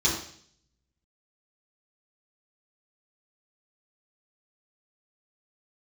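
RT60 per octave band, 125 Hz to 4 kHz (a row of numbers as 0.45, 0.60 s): 0.95, 0.65, 0.60, 0.55, 0.60, 0.70 s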